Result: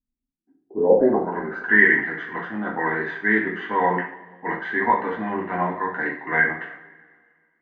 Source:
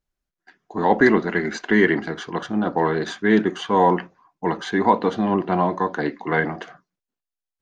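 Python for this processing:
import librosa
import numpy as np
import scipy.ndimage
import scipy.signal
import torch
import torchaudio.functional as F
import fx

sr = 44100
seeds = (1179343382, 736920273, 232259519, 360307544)

y = fx.filter_sweep_lowpass(x, sr, from_hz=250.0, to_hz=1900.0, start_s=0.43, end_s=1.79, q=7.2)
y = fx.rev_double_slope(y, sr, seeds[0], early_s=0.46, late_s=2.0, knee_db=-20, drr_db=-3.0)
y = F.gain(torch.from_numpy(y), -11.0).numpy()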